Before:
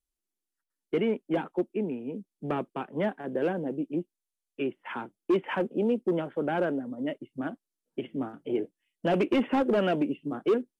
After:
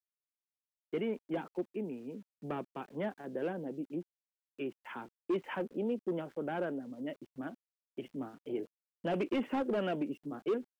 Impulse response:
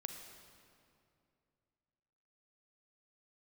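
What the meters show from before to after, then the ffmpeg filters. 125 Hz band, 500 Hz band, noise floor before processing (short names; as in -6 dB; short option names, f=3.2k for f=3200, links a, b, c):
-8.0 dB, -8.0 dB, under -85 dBFS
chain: -af "aeval=exprs='val(0)*gte(abs(val(0)),0.00237)':c=same,volume=-8dB"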